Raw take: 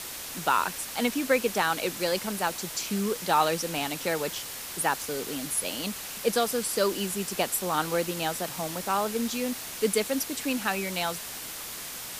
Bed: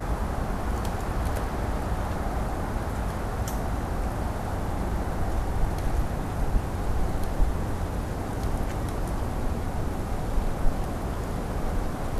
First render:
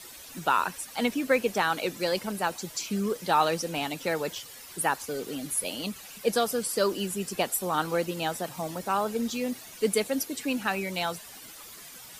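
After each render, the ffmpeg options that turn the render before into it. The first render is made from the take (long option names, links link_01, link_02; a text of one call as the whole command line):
ffmpeg -i in.wav -af "afftdn=noise_reduction=12:noise_floor=-39" out.wav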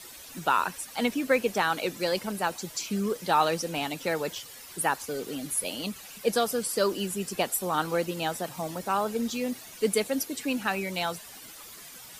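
ffmpeg -i in.wav -af anull out.wav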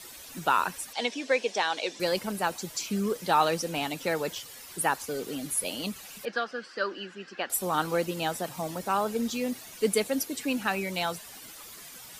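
ffmpeg -i in.wav -filter_complex "[0:a]asettb=1/sr,asplit=3[link_01][link_02][link_03];[link_01]atrim=end=0.934[link_04];[link_02]atrim=start=0.93:end=2,asetpts=PTS-STARTPTS,afade=type=in:duration=0.004:curve=qsin,afade=type=out:start_time=1.066:duration=0.004:curve=qsin,highpass=420,equalizer=frequency=1300:width_type=q:width=4:gain=-9,equalizer=frequency=3500:width_type=q:width=4:gain=5,equalizer=frequency=5400:width_type=q:width=4:gain=5,lowpass=frequency=7700:width=0.5412,lowpass=frequency=7700:width=1.3066[link_05];[link_03]atrim=start=1.996[link_06];[link_04][link_05]acrossfade=duration=0.004:curve1=hsin:curve2=qsin[link_07];[link_07][link_06]acrossfade=duration=0.004:curve1=qsin:curve2=hsin,asettb=1/sr,asplit=3[link_08][link_09][link_10];[link_08]atrim=end=6.254[link_11];[link_09]atrim=start=6.25:end=7.5,asetpts=PTS-STARTPTS,afade=type=in:duration=0.004:curve=qsin,afade=type=out:start_time=1.246:duration=0.004:curve=qsin,highpass=400,equalizer=frequency=440:width_type=q:width=4:gain=-8,equalizer=frequency=650:width_type=q:width=4:gain=-7,equalizer=frequency=950:width_type=q:width=4:gain=-6,equalizer=frequency=1600:width_type=q:width=4:gain=8,equalizer=frequency=2300:width_type=q:width=4:gain=-5,equalizer=frequency=3600:width_type=q:width=4:gain=-8,lowpass=frequency=4000:width=0.5412,lowpass=frequency=4000:width=1.3066[link_12];[link_10]atrim=start=7.496[link_13];[link_11][link_12]acrossfade=duration=0.004:curve1=hsin:curve2=qsin[link_14];[link_14][link_13]acrossfade=duration=0.004:curve1=qsin:curve2=hsin" out.wav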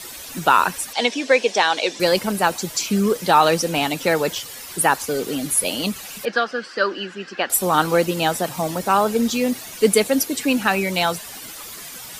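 ffmpeg -i in.wav -af "volume=10dB,alimiter=limit=-3dB:level=0:latency=1" out.wav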